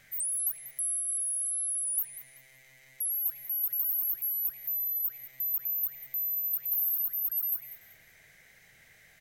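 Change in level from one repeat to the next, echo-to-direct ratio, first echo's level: −11.5 dB, −14.5 dB, −15.0 dB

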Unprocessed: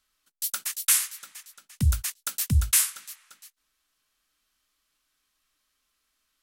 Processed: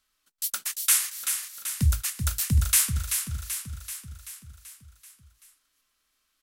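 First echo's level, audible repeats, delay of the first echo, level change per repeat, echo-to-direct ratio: −7.0 dB, 6, 384 ms, −4.5 dB, −5.0 dB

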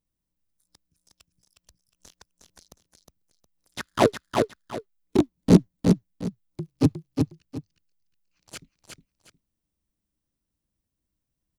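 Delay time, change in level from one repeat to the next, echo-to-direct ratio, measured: 361 ms, −11.5 dB, −3.5 dB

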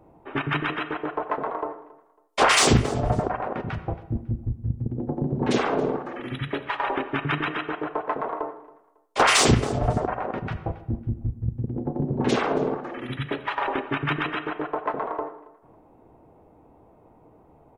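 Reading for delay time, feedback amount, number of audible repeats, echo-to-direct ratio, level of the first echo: 275 ms, 27%, 2, −20.5 dB, −21.0 dB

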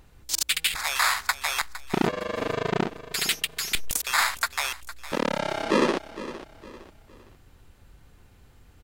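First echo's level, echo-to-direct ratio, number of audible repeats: −14.5 dB, −14.0 dB, 3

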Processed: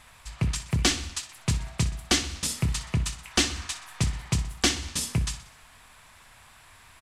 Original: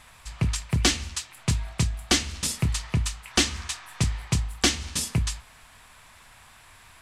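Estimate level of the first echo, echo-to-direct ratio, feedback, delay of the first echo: −14.0 dB, −12.5 dB, 52%, 62 ms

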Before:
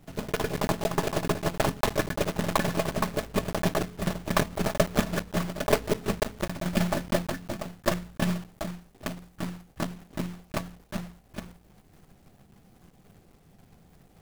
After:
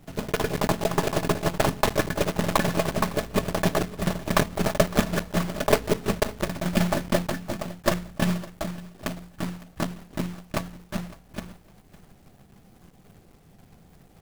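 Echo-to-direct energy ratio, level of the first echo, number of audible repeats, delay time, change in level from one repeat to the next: −20.0 dB, −20.0 dB, 2, 558 ms, −14.0 dB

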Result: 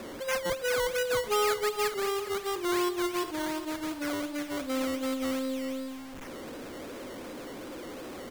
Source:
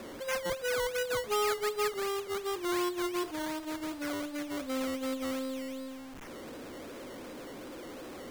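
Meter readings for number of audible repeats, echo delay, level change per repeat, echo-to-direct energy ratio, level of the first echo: 1, 410 ms, repeats not evenly spaced, −14.0 dB, −14.0 dB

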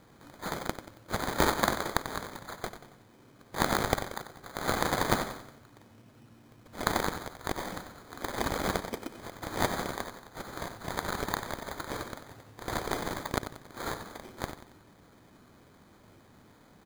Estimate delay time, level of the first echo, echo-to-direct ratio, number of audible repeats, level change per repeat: 92 ms, −11.0 dB, −10.0 dB, 4, −7.5 dB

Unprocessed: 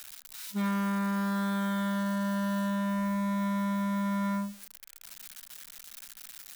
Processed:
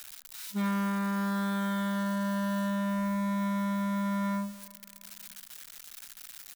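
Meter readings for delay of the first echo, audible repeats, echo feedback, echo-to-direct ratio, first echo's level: 314 ms, 2, 40%, −20.5 dB, −21.0 dB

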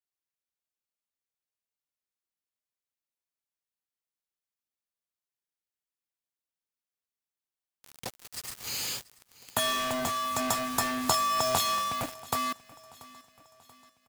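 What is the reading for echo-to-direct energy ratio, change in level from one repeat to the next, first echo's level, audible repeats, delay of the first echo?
−20.0 dB, −6.0 dB, −21.0 dB, 3, 684 ms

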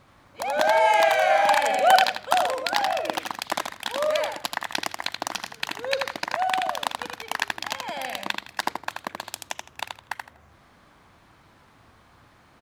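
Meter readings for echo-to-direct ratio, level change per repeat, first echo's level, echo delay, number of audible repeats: −5.0 dB, −13.0 dB, −5.0 dB, 81 ms, 3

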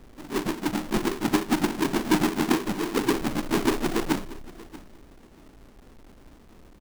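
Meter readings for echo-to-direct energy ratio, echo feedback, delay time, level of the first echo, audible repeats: −19.0 dB, 16%, 634 ms, −19.0 dB, 2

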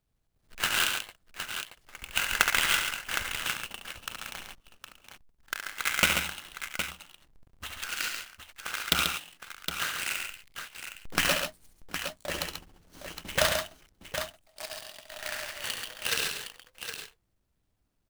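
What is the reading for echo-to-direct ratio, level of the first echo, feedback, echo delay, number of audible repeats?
−2.5 dB, −7.5 dB, repeats not evenly spaced, 69 ms, 3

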